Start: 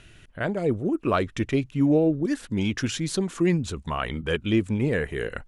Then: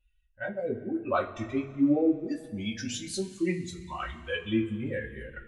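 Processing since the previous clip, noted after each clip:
spectral dynamics exaggerated over time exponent 2
coupled-rooms reverb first 0.21 s, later 2.1 s, from −20 dB, DRR −4.5 dB
level −7 dB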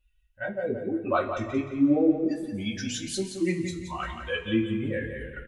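repeating echo 174 ms, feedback 32%, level −8 dB
level +2 dB

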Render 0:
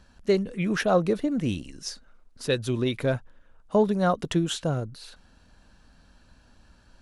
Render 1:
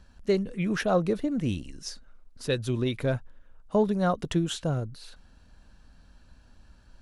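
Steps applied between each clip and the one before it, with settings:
low-shelf EQ 110 Hz +7 dB
level −3 dB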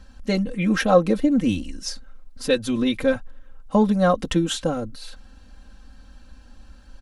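comb filter 3.8 ms, depth 95%
level +4.5 dB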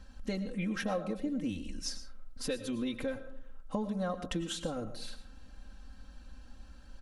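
downward compressor 4 to 1, threshold −28 dBFS, peak gain reduction 15.5 dB
on a send at −11 dB: convolution reverb RT60 0.55 s, pre-delay 70 ms
on the sum: level −5.5 dB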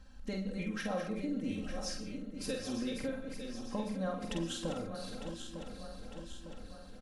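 feedback delay that plays each chunk backwards 452 ms, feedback 75%, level −8 dB
double-tracking delay 48 ms −4.5 dB
level −4 dB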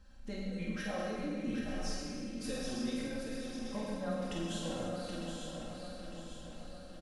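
single-tap delay 776 ms −7.5 dB
dense smooth reverb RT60 1.7 s, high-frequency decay 0.9×, DRR −2.5 dB
level −5 dB

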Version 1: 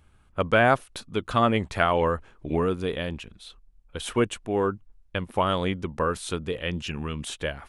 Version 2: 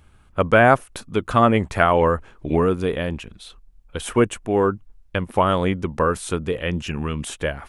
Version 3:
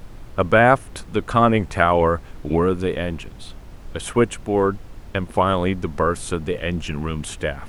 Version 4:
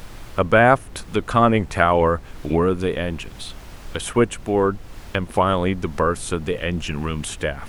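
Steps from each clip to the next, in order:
dynamic equaliser 3,900 Hz, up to −8 dB, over −47 dBFS, Q 1.3; level +6 dB
background noise brown −36 dBFS
one half of a high-frequency compander encoder only

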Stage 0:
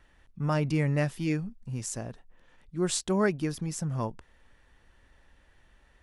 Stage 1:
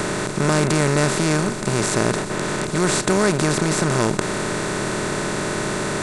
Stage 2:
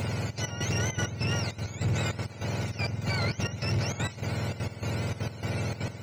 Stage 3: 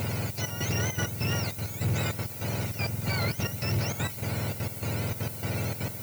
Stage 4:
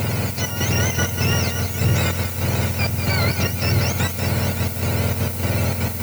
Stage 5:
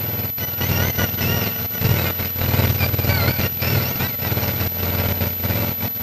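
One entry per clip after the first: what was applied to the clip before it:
compressor on every frequency bin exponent 0.2; level +3.5 dB
frequency axis turned over on the octave scale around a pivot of 930 Hz; gate pattern "xxxx.x.." 199 BPM −12 dB; soft clipping −15 dBFS, distortion −12 dB; level −7.5 dB
background noise violet −41 dBFS
echo machine with several playback heads 190 ms, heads first and third, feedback 48%, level −9.5 dB; level +8.5 dB
delay that plays each chunk backwards 462 ms, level −6 dB; power curve on the samples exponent 2; switching amplifier with a slow clock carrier 12,000 Hz; level +6 dB

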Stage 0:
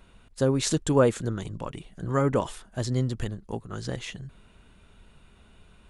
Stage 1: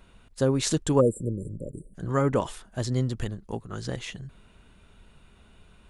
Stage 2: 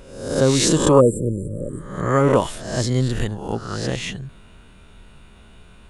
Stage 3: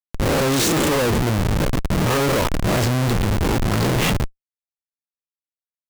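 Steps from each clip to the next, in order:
time-frequency box erased 0:01.00–0:01.95, 610–7,200 Hz
peak hold with a rise ahead of every peak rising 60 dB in 0.73 s; level +6 dB
comparator with hysteresis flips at −28 dBFS; level +3 dB

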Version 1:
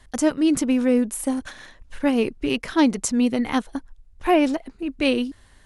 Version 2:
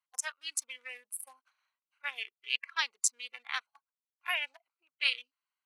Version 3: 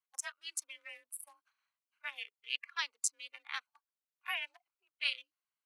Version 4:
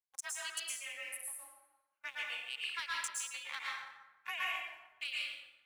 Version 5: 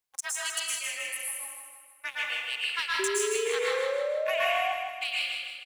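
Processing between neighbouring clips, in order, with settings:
adaptive Wiener filter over 25 samples; noise reduction from a noise print of the clip's start 15 dB; high-pass filter 1,400 Hz 24 dB per octave
frequency shifter +37 Hz; level −5 dB
downward compressor, threshold −37 dBFS, peak gain reduction 9.5 dB; leveller curve on the samples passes 2; dense smooth reverb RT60 1.1 s, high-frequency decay 0.6×, pre-delay 100 ms, DRR −5 dB; level −7 dB
sound drawn into the spectrogram rise, 0:02.99–0:04.73, 380–760 Hz −39 dBFS; in parallel at −10 dB: soft clipping −32 dBFS, distortion −17 dB; on the sum: repeating echo 157 ms, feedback 50%, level −5.5 dB; level +6 dB

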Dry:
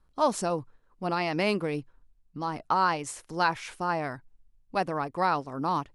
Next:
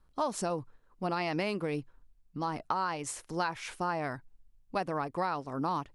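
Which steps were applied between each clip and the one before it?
downward compressor, threshold −28 dBFS, peak gain reduction 9 dB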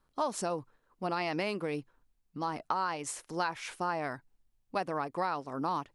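low-shelf EQ 110 Hz −12 dB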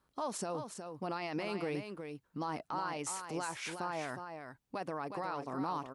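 high-pass filter 58 Hz
brickwall limiter −28.5 dBFS, peak gain reduction 11.5 dB
on a send: single-tap delay 364 ms −7 dB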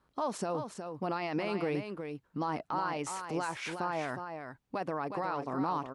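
high-shelf EQ 5,300 Hz −10.5 dB
level +4.5 dB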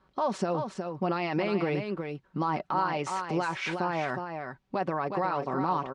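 comb filter 5.3 ms, depth 44%
in parallel at −1 dB: brickwall limiter −26.5 dBFS, peak gain reduction 7 dB
on the sum: low-pass filter 4,900 Hz 12 dB per octave

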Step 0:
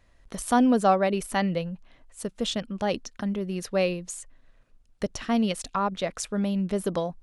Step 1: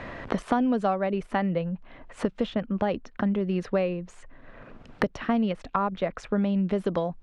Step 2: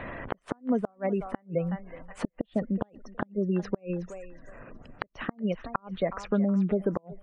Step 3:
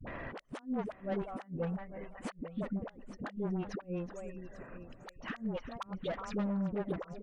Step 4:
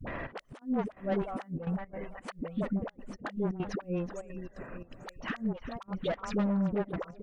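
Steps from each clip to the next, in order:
low-pass filter 2,200 Hz 12 dB per octave; multiband upward and downward compressor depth 100%
gate on every frequency bin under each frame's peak −25 dB strong; feedback echo with a high-pass in the loop 369 ms, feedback 31%, high-pass 470 Hz, level −14.5 dB; gate with flip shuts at −15 dBFS, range −36 dB
single-tap delay 843 ms −16.5 dB; soft clipping −27 dBFS, distortion −9 dB; all-pass dispersion highs, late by 72 ms, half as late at 420 Hz; level −3.5 dB
gate pattern "xxx.xx.xxx.xxxx" 171 BPM −12 dB; level +5 dB

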